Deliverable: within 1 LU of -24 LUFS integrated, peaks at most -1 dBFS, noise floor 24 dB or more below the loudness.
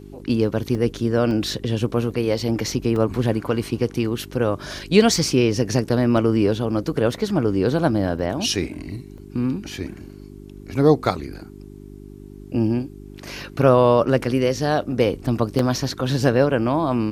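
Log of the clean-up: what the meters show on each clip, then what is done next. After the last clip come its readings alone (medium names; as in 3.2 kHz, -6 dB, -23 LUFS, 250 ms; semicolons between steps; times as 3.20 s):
dropouts 8; longest dropout 1.8 ms; hum 50 Hz; highest harmonic 400 Hz; hum level -39 dBFS; loudness -21.0 LUFS; peak level -2.0 dBFS; loudness target -24.0 LUFS
-> interpolate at 0.75/1.31/2.11/2.96/6.17/8.19/9.18/15.59 s, 1.8 ms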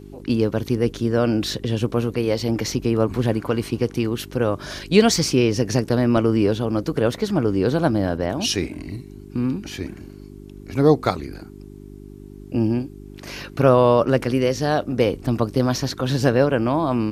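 dropouts 0; hum 50 Hz; highest harmonic 400 Hz; hum level -38 dBFS
-> de-hum 50 Hz, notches 8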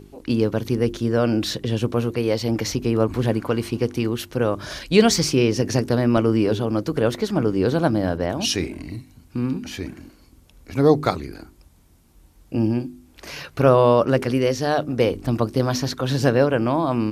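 hum not found; loudness -21.0 LUFS; peak level -2.0 dBFS; loudness target -24.0 LUFS
-> trim -3 dB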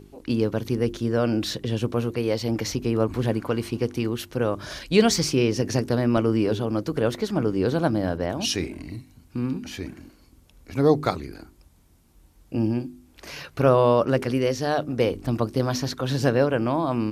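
loudness -24.0 LUFS; peak level -5.0 dBFS; noise floor -56 dBFS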